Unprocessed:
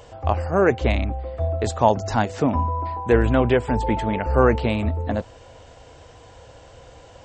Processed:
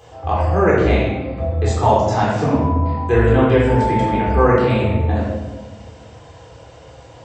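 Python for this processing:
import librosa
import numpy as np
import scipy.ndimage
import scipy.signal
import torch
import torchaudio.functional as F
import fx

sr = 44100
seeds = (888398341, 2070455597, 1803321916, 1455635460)

y = scipy.signal.sosfilt(scipy.signal.butter(2, 67.0, 'highpass', fs=sr, output='sos'), x)
y = fx.room_shoebox(y, sr, seeds[0], volume_m3=660.0, walls='mixed', distance_m=3.8)
y = y * 10.0 ** (-4.5 / 20.0)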